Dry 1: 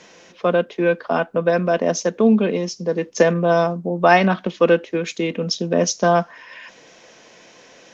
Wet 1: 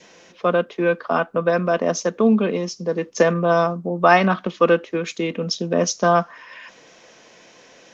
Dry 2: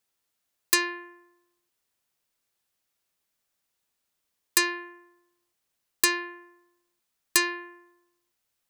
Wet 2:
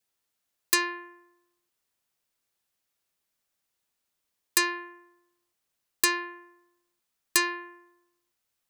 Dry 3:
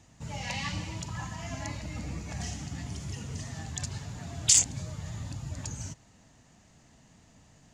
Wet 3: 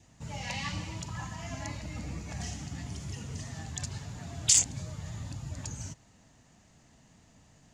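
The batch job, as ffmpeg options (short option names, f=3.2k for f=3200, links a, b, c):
-af "adynamicequalizer=threshold=0.00891:dfrequency=1200:dqfactor=4.1:tfrequency=1200:tqfactor=4.1:attack=5:release=100:ratio=0.375:range=4:mode=boostabove:tftype=bell,volume=-1.5dB"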